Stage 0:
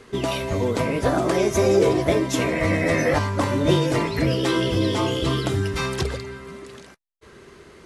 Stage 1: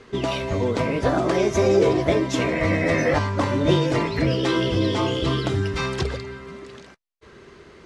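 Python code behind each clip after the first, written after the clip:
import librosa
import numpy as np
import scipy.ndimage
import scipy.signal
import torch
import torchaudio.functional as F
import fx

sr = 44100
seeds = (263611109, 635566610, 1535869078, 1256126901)

y = scipy.signal.sosfilt(scipy.signal.butter(2, 6100.0, 'lowpass', fs=sr, output='sos'), x)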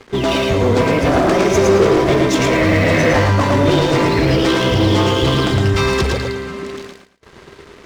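y = fx.leveller(x, sr, passes=3)
y = fx.echo_feedback(y, sr, ms=111, feedback_pct=24, wet_db=-3)
y = F.gain(torch.from_numpy(y), -2.0).numpy()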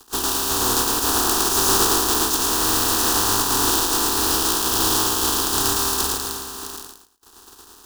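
y = fx.spec_flatten(x, sr, power=0.27)
y = fx.fixed_phaser(y, sr, hz=580.0, stages=6)
y = F.gain(torch.from_numpy(y), -3.5).numpy()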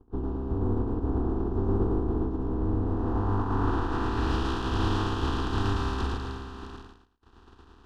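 y = fx.bass_treble(x, sr, bass_db=15, treble_db=-6)
y = fx.filter_sweep_lowpass(y, sr, from_hz=530.0, to_hz=2700.0, start_s=2.8, end_s=4.35, q=0.96)
y = F.gain(torch.from_numpy(y), -8.0).numpy()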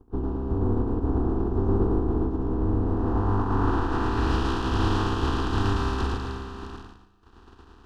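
y = fx.peak_eq(x, sr, hz=3500.0, db=-2.5, octaves=0.29)
y = fx.echo_feedback(y, sr, ms=147, feedback_pct=60, wet_db=-20.5)
y = F.gain(torch.from_numpy(y), 3.0).numpy()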